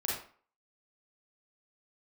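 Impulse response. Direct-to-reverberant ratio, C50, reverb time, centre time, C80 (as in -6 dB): -4.5 dB, 1.0 dB, 0.45 s, 49 ms, 6.5 dB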